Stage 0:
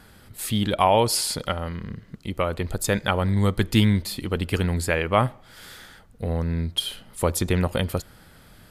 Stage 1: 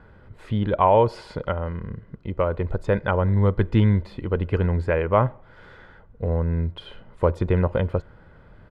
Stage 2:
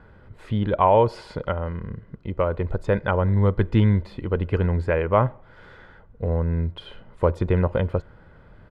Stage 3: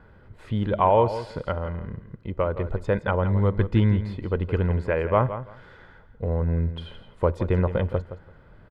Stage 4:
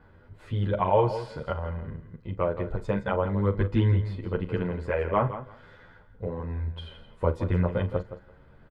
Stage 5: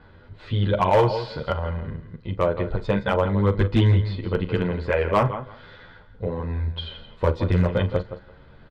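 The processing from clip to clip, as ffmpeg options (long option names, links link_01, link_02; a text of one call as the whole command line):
ffmpeg -i in.wav -af "lowpass=1400,aecho=1:1:2:0.34,volume=1.5dB" out.wav
ffmpeg -i in.wav -af anull out.wav
ffmpeg -i in.wav -af "aecho=1:1:168|336:0.251|0.0452,volume=-2dB" out.wav
ffmpeg -i in.wav -filter_complex "[0:a]asplit=2[link_01][link_02];[link_02]adelay=40,volume=-13.5dB[link_03];[link_01][link_03]amix=inputs=2:normalize=0,asplit=2[link_04][link_05];[link_05]adelay=10.2,afreqshift=0.56[link_06];[link_04][link_06]amix=inputs=2:normalize=1" out.wav
ffmpeg -i in.wav -af "lowpass=frequency=4100:width_type=q:width=2.8,volume=16.5dB,asoftclip=hard,volume=-16.5dB,volume=5dB" out.wav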